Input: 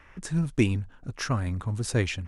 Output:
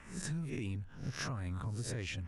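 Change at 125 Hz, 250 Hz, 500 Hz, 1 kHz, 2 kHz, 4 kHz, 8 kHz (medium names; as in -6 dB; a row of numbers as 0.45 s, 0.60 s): -10.5 dB, -13.0 dB, -14.0 dB, -10.5 dB, -10.0 dB, -8.5 dB, -7.5 dB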